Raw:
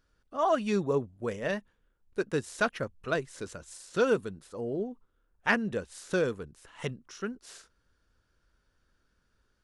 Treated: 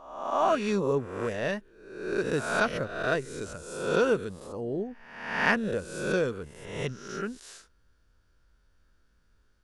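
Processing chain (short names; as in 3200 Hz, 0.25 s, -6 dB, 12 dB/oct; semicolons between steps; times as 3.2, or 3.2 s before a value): spectral swells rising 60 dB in 0.86 s; low shelf 86 Hz +7 dB; gain -1 dB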